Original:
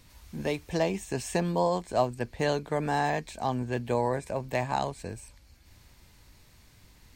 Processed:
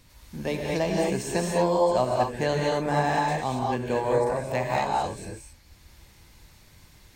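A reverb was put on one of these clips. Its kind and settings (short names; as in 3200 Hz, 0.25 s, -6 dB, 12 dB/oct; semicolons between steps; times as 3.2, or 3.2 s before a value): non-linear reverb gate 0.26 s rising, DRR -2 dB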